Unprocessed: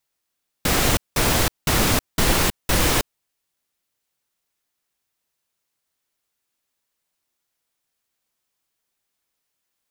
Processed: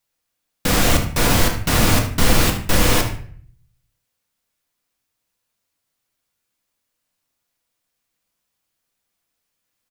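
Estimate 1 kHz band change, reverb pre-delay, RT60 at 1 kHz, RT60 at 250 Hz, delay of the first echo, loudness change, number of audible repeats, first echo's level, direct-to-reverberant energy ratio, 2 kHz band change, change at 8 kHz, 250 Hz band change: +2.0 dB, 3 ms, 0.50 s, 0.65 s, 75 ms, +2.5 dB, 1, -12.0 dB, 2.0 dB, +2.0 dB, +1.0 dB, +4.5 dB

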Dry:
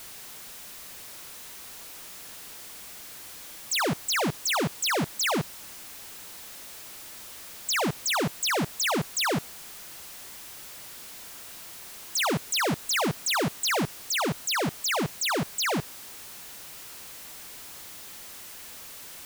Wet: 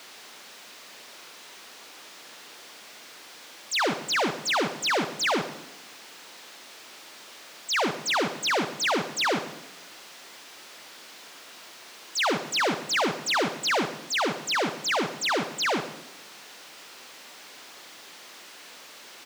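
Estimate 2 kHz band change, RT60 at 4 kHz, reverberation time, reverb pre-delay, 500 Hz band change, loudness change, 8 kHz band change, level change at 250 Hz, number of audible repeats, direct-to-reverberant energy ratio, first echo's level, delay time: +2.5 dB, 0.95 s, 1.1 s, 35 ms, +2.0 dB, +0.5 dB, -4.0 dB, -1.0 dB, 1, 10.0 dB, -15.5 dB, 0.123 s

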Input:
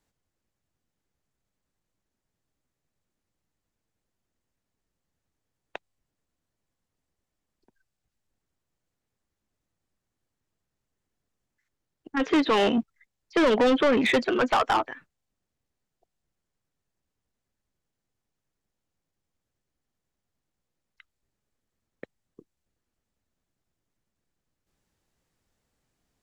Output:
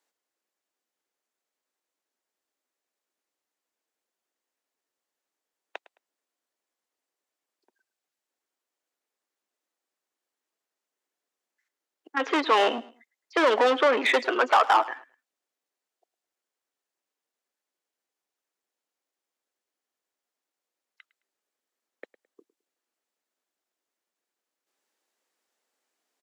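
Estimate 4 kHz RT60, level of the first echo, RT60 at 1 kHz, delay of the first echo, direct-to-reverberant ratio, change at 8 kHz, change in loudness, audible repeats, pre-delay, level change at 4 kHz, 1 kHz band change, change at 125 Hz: none, -19.0 dB, none, 0.107 s, none, 0.0 dB, +0.5 dB, 2, none, +1.0 dB, +4.0 dB, under -15 dB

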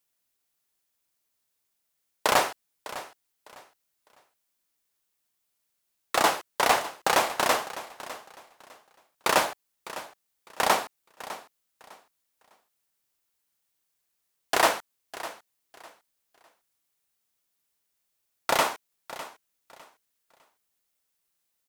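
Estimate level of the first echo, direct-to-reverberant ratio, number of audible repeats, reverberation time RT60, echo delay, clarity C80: -15.5 dB, none, 2, none, 0.604 s, none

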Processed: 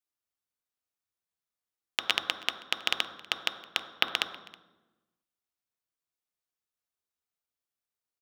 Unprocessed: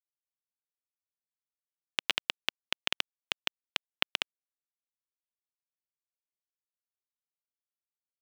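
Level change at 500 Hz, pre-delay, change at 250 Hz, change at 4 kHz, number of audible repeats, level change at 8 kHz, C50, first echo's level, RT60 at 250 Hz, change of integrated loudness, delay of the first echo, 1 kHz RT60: +3.5 dB, 3 ms, +3.0 dB, +3.0 dB, 1, +2.5 dB, 8.5 dB, -23.5 dB, 1.4 s, +3.0 dB, 0.321 s, 1.0 s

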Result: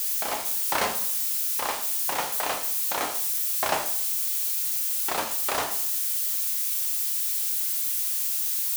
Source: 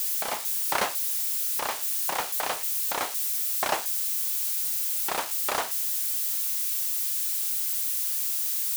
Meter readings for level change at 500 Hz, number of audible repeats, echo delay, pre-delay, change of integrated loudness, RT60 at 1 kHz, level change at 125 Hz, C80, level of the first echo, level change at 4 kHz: +2.0 dB, none, none, 5 ms, +1.0 dB, 0.60 s, n/a, 12.0 dB, none, +1.0 dB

